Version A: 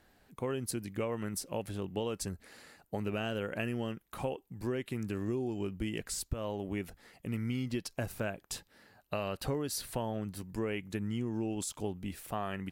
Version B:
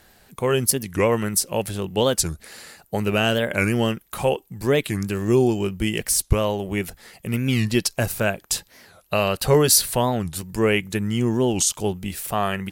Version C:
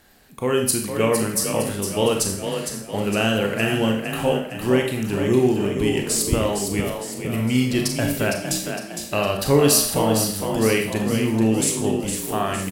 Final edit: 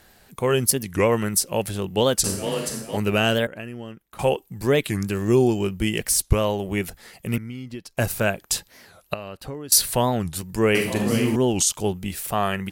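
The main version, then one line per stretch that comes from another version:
B
0:02.24–0:02.97: punch in from C
0:03.47–0:04.19: punch in from A
0:07.38–0:07.97: punch in from A
0:09.14–0:09.72: punch in from A
0:10.75–0:11.36: punch in from C

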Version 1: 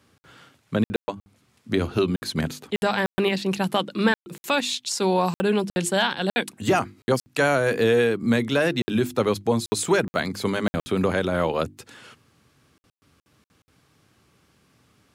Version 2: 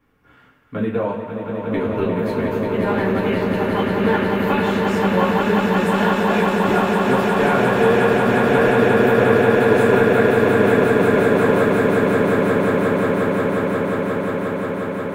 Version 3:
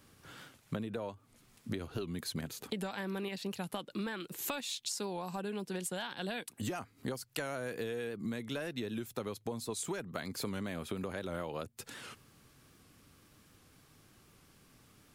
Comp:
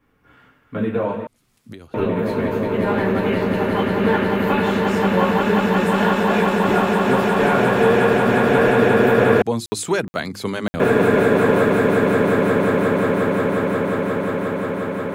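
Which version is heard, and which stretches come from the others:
2
0:01.27–0:01.94: punch in from 3
0:09.42–0:10.80: punch in from 1

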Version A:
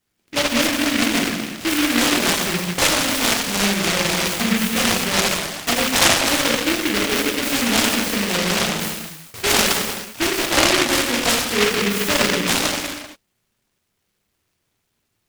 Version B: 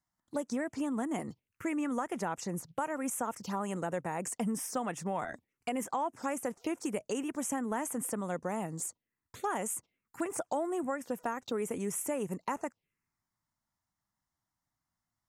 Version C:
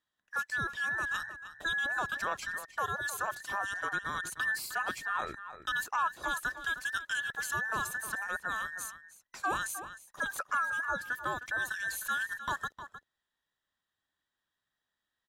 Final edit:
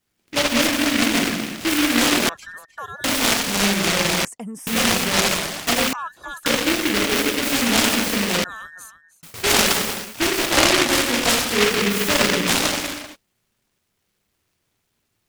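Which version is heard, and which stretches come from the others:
A
0:02.29–0:03.04: punch in from C
0:04.25–0:04.67: punch in from B
0:05.93–0:06.46: punch in from C
0:08.44–0:09.23: punch in from C

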